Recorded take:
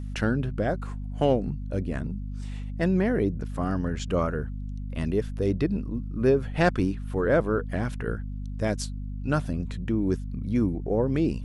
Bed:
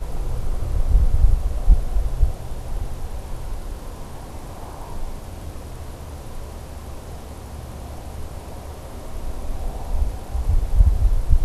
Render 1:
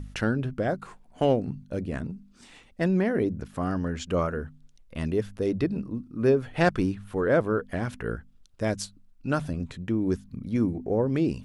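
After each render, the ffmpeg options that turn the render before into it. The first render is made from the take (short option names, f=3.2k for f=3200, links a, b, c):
-af "bandreject=f=50:t=h:w=4,bandreject=f=100:t=h:w=4,bandreject=f=150:t=h:w=4,bandreject=f=200:t=h:w=4,bandreject=f=250:t=h:w=4"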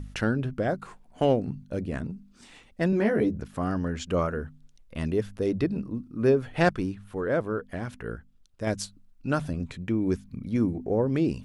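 -filter_complex "[0:a]asettb=1/sr,asplit=3[a][b][c];[a]atrim=end=2.914[d];[b]atrim=start=2.91:end=3.37,asetpts=PTS-STARTPTS,afade=t=in:d=0.004:c=qsin,afade=t=out:st=0.456:d=0.004:c=qsin,asplit=2[e][f];[f]adelay=14,volume=-3dB[g];[e][g]amix=inputs=2:normalize=0,atrim=end_sample=20286[h];[c]atrim=start=3.366[i];[d][h]acrossfade=d=0.004:c1=hsin:c2=qsin[j];[j][i]acrossfade=d=0.004:c1=qsin:c2=hsin,asettb=1/sr,asplit=3[k][l][m];[k]atrim=end=9.684[n];[l]atrim=start=9.68:end=10.5,asetpts=PTS-STARTPTS,afade=t=in:d=0.004:c=qsin,afade=t=out:st=0.816:d=0.004:c=qsin,equalizer=f=2.3k:t=o:w=0.21:g=6.5[o];[m]atrim=start=10.496[p];[n][o]acrossfade=d=0.004:c1=hsin:c2=qsin[q];[q][p]acrossfade=d=0.004:c1=qsin:c2=hsin,asplit=3[r][s][t];[r]atrim=end=6.732[u];[s]atrim=start=6.728:end=8.672,asetpts=PTS-STARTPTS,volume=-4dB[v];[t]atrim=start=8.668[w];[u][v]acrossfade=d=0.004:c1=hsin:c2=hsin[x];[x][w]acrossfade=d=0.004:c1=hsin:c2=hsin"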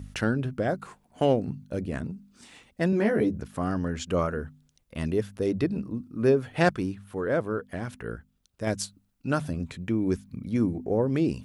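-af "highpass=52,highshelf=f=9.7k:g=7.5"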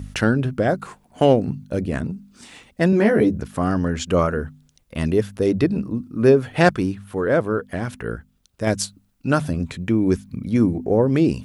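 -af "volume=7.5dB,alimiter=limit=-2dB:level=0:latency=1"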